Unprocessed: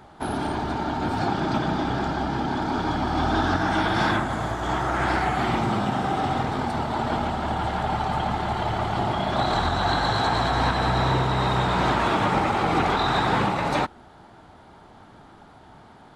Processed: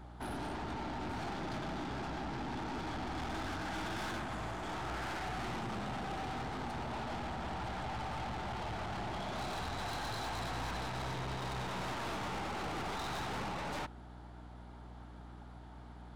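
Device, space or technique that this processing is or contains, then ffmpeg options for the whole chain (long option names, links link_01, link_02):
valve amplifier with mains hum: -af "aeval=exprs='(tanh(35.5*val(0)+0.3)-tanh(0.3))/35.5':channel_layout=same,aeval=exprs='val(0)+0.00708*(sin(2*PI*60*n/s)+sin(2*PI*2*60*n/s)/2+sin(2*PI*3*60*n/s)/3+sin(2*PI*4*60*n/s)/4+sin(2*PI*5*60*n/s)/5)':channel_layout=same,volume=-7dB"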